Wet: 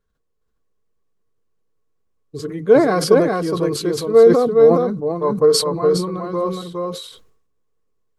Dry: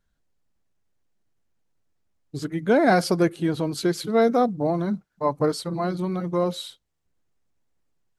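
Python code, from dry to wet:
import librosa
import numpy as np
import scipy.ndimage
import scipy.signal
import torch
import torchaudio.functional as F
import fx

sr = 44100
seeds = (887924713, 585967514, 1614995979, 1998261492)

p1 = fx.low_shelf(x, sr, hz=180.0, db=3.5)
p2 = fx.small_body(p1, sr, hz=(450.0, 1100.0), ring_ms=50, db=16)
p3 = p2 + fx.echo_single(p2, sr, ms=414, db=-3.0, dry=0)
p4 = fx.sustainer(p3, sr, db_per_s=71.0)
y = p4 * librosa.db_to_amplitude(-4.5)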